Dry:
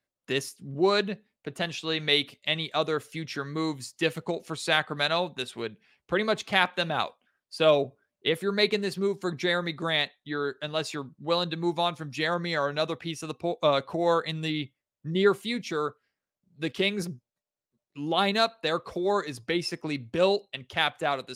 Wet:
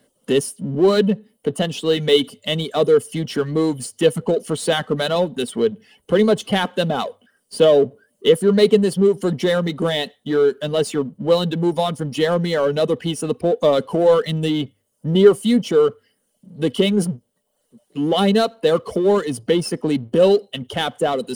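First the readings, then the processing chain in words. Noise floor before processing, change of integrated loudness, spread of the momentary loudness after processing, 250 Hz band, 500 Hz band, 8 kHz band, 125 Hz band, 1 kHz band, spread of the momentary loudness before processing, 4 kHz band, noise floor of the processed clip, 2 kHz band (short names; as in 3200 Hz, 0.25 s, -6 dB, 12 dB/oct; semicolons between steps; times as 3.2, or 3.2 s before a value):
under -85 dBFS, +9.0 dB, 9 LU, +12.0 dB, +11.5 dB, +10.5 dB, +11.5 dB, +3.5 dB, 10 LU, +4.0 dB, -69 dBFS, 0.0 dB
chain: notches 50/100 Hz; reverb removal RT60 0.52 s; bell 9400 Hz +15 dB 0.35 oct; notch 2400 Hz, Q 8; power-law curve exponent 0.7; small resonant body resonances 230/440/3000 Hz, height 15 dB, ringing for 25 ms; gain -4 dB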